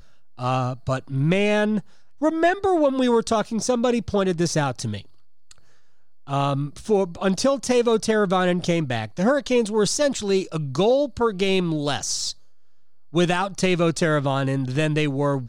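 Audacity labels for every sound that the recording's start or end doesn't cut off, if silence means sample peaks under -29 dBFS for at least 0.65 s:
6.290000	12.320000	sound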